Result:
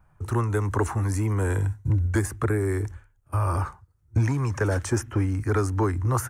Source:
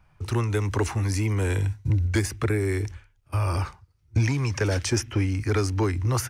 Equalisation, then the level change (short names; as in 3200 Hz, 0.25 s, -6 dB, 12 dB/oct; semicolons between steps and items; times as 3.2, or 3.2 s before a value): band shelf 3500 Hz -10.5 dB; notch 4800 Hz, Q 26; dynamic EQ 1100 Hz, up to +4 dB, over -45 dBFS, Q 1.5; 0.0 dB